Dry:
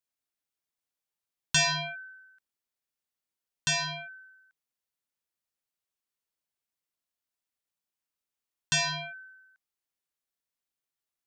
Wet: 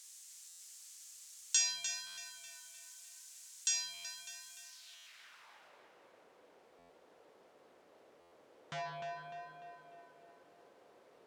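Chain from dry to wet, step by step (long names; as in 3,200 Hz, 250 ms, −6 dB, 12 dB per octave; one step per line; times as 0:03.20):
Bessel low-pass filter 11,000 Hz
in parallel at −3 dB: downward compressor, threshold −40 dBFS, peak gain reduction 17 dB
on the sum: bit-depth reduction 8 bits, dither triangular
band-pass filter sweep 7,100 Hz → 480 Hz, 0:04.60–0:05.82
on a send: tape delay 299 ms, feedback 59%, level −4 dB, low-pass 4,100 Hz
on the sum: buffer that repeats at 0:00.48/0:02.06/0:03.93/0:04.95/0:06.78/0:08.20, samples 512, times 9
highs frequency-modulated by the lows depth 0.19 ms
level +1 dB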